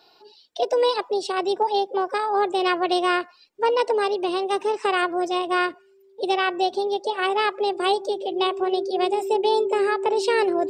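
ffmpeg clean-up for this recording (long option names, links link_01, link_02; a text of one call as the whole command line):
ffmpeg -i in.wav -af "bandreject=frequency=390:width=30" out.wav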